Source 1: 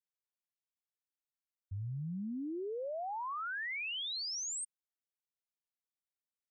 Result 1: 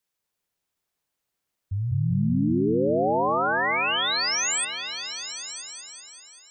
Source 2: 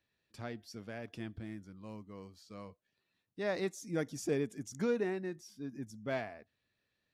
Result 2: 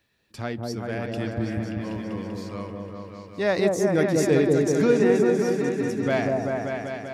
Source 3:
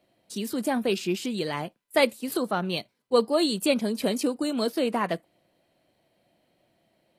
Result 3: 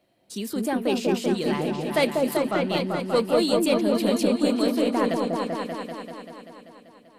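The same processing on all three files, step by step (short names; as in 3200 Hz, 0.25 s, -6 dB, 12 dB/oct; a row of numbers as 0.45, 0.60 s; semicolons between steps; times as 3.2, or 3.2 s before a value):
in parallel at -5.5 dB: soft clip -22 dBFS; on the sum: repeats that get brighter 0.194 s, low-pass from 750 Hz, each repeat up 1 oct, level 0 dB; match loudness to -24 LUFS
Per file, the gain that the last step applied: +9.0, +8.5, -3.0 dB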